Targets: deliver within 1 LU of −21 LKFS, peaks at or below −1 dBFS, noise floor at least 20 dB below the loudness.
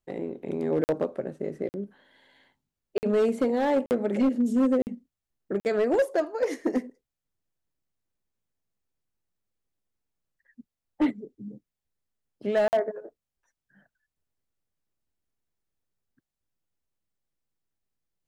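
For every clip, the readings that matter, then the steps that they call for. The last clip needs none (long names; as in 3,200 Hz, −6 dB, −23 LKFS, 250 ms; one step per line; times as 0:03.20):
share of clipped samples 0.8%; peaks flattened at −17.5 dBFS; number of dropouts 7; longest dropout 49 ms; integrated loudness −27.0 LKFS; sample peak −17.5 dBFS; target loudness −21.0 LKFS
→ clipped peaks rebuilt −17.5 dBFS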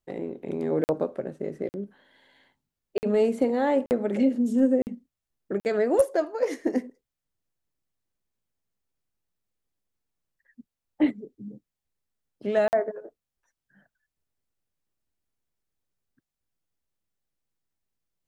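share of clipped samples 0.0%; number of dropouts 7; longest dropout 49 ms
→ repair the gap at 0:00.84/0:01.69/0:02.98/0:03.86/0:04.82/0:05.60/0:12.68, 49 ms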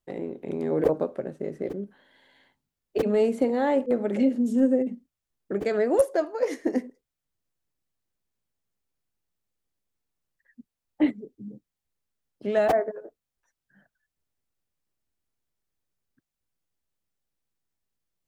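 number of dropouts 0; integrated loudness −26.0 LKFS; sample peak −7.5 dBFS; target loudness −21.0 LKFS
→ level +5 dB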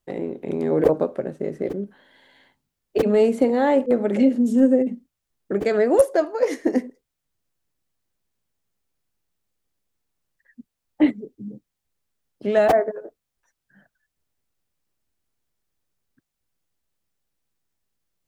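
integrated loudness −21.0 LKFS; sample peak −2.5 dBFS; background noise floor −82 dBFS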